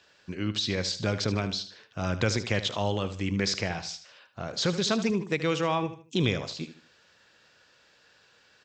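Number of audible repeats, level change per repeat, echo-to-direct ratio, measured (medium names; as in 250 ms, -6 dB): 3, -9.5 dB, -12.0 dB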